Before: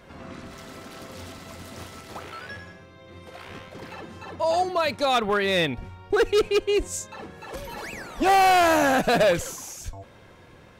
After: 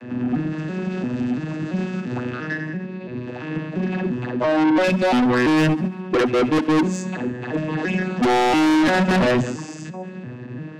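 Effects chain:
vocoder with an arpeggio as carrier major triad, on B2, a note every 341 ms
dynamic equaliser 250 Hz, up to +6 dB, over −42 dBFS, Q 3.4
hollow resonant body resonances 240/1,700/2,600 Hz, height 14 dB, ringing for 25 ms
soft clipping −24.5 dBFS, distortion −2 dB
feedback echo with a high-pass in the loop 68 ms, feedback 62%, level −17.5 dB
every ending faded ahead of time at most 180 dB per second
level +9 dB

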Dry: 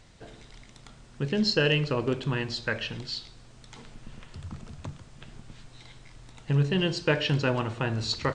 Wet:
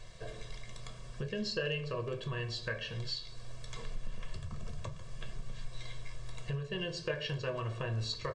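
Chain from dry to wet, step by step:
comb filter 1.8 ms, depth 99%
downward compressor 2.5 to 1, threshold −39 dBFS, peak gain reduction 15.5 dB
on a send: convolution reverb RT60 0.25 s, pre-delay 3 ms, DRR 6 dB
on the sum: level −1.5 dB

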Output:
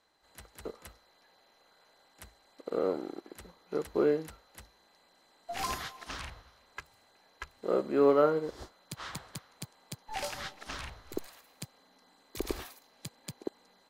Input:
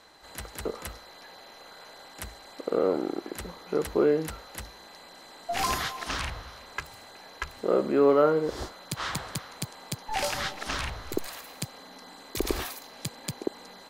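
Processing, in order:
expander for the loud parts 1.5 to 1, over −46 dBFS
level −2.5 dB

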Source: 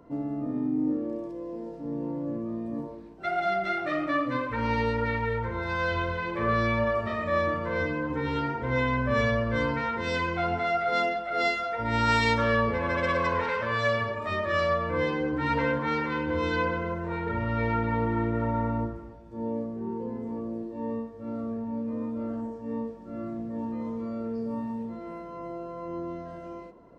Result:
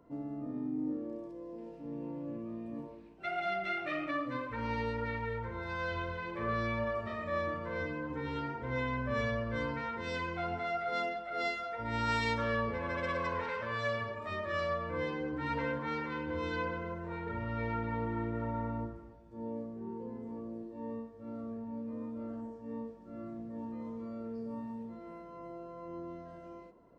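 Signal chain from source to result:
0:01.58–0:04.11: parametric band 2,600 Hz +10 dB 0.62 octaves
level −8.5 dB

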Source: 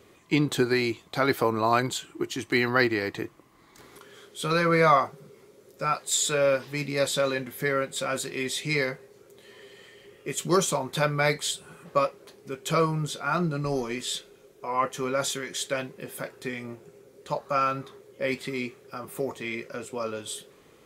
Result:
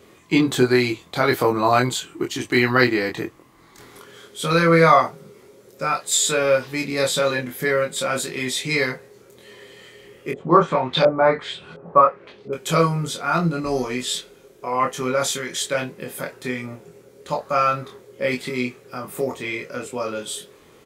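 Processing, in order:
0:10.31–0:12.53: auto-filter low-pass saw up 1.4 Hz 530–4,300 Hz
double-tracking delay 24 ms −3 dB
level +4 dB

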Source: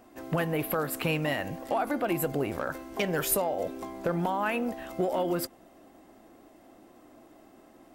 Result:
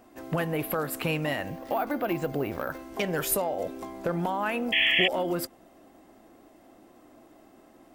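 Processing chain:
0:01.46–0:02.79: bad sample-rate conversion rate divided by 3×, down filtered, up hold
0:04.72–0:05.08: sound drawn into the spectrogram noise 1,700–3,400 Hz −23 dBFS
every ending faded ahead of time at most 590 dB per second

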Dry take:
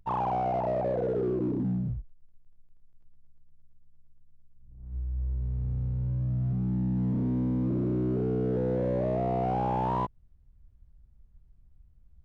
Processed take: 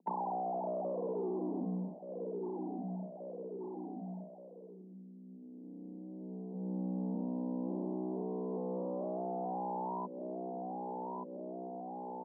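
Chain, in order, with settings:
adaptive Wiener filter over 41 samples
noise gate −48 dBFS, range −8 dB
repeating echo 1,178 ms, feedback 33%, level −17 dB
tube saturation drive 32 dB, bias 0.3
Butterworth low-pass 1,000 Hz 72 dB per octave
downward compressor 6 to 1, threshold −52 dBFS, peak gain reduction 17.5 dB
Chebyshev high-pass filter 170 Hz, order 10
level +16 dB

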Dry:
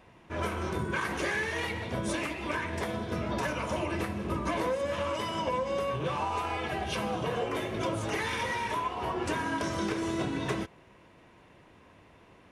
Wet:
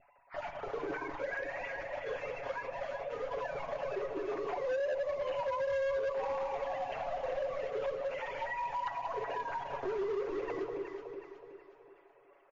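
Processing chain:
three sine waves on the formant tracks
in parallel at −8.5 dB: bit reduction 6 bits
on the sum: comb filter 7.2 ms, depth 94%
dynamic equaliser 1,300 Hz, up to −6 dB, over −39 dBFS, Q 2.3
pitch vibrato 2.7 Hz 50 cents
mains-hum notches 50/100/150/200 Hz
delay that swaps between a low-pass and a high-pass 185 ms, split 930 Hz, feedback 67%, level −4.5 dB
on a send at −12 dB: convolution reverb RT60 1.0 s, pre-delay 10 ms
on the sum: downward compressor 2 to 1, threshold −31 dBFS, peak gain reduction 11 dB
spectral tilt −3.5 dB per octave
gain into a clipping stage and back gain 24 dB
level −6 dB
MP3 32 kbit/s 16,000 Hz

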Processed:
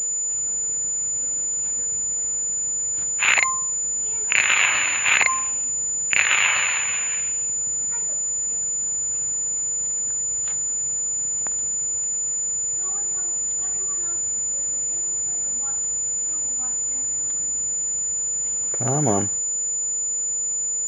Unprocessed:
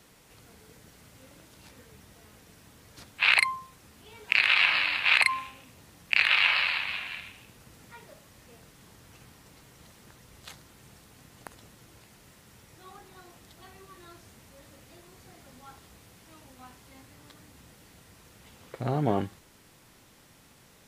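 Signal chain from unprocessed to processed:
steady tone 500 Hz −58 dBFS
switching amplifier with a slow clock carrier 7,000 Hz
level +5 dB

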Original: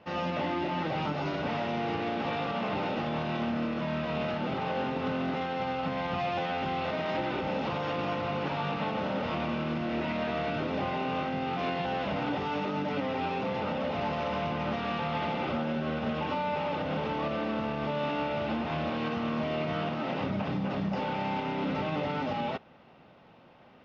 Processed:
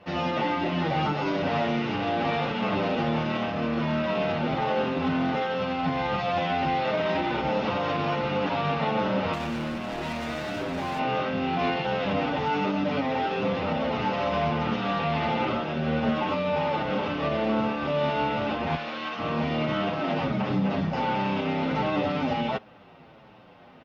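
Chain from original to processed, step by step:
0:09.33–0:10.99: hard clipping −34 dBFS, distortion −17 dB
0:18.75–0:19.19: high-pass filter 1,100 Hz 6 dB per octave
barber-pole flanger 8 ms −1.4 Hz
level +8 dB

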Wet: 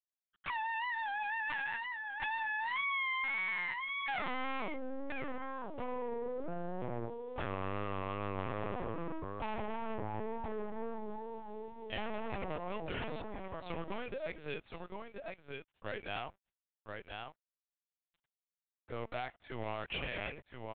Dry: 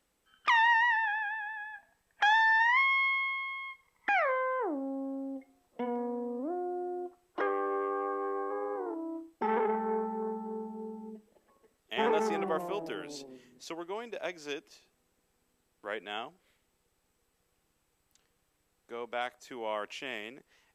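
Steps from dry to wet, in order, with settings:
stylus tracing distortion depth 0.028 ms
downward compressor 10 to 1, threshold −35 dBFS, peak gain reduction 14 dB
high-pass filter 460 Hz 6 dB per octave
high-frequency loss of the air 290 metres
single-tap delay 1,026 ms −7 dB
automatic gain control gain up to 9 dB
tube saturation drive 34 dB, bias 0.2
dead-zone distortion −59 dBFS
tape wow and flutter 61 cents
dynamic equaliser 2,600 Hz, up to +6 dB, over −56 dBFS, Q 2.8
linear-prediction vocoder at 8 kHz pitch kept

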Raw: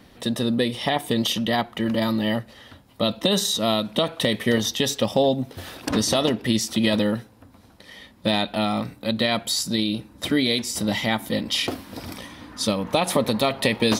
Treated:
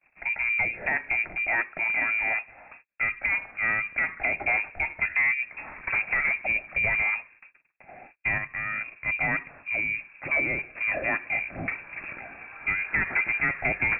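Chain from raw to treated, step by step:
noise gate −48 dBFS, range −34 dB
low-shelf EQ 340 Hz −4 dB
0:08.38–0:08.92: output level in coarse steps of 10 dB
soft clipping −17.5 dBFS, distortion −13 dB
voice inversion scrambler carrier 2,600 Hz

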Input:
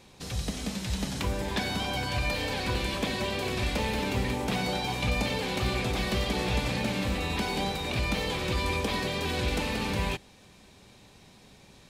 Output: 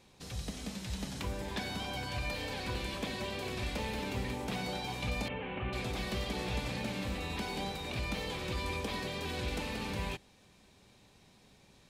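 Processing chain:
0:05.28–0:05.73: elliptic low-pass filter 2,900 Hz, stop band 50 dB
level −7.5 dB

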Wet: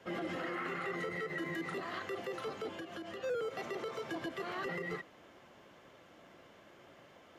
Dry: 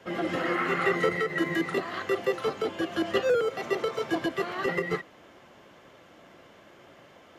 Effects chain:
brickwall limiter −25 dBFS, peak gain reduction 11 dB
0:02.73–0:03.24: downward compressor, threshold −36 dBFS, peak gain reduction 7 dB
level −5.5 dB

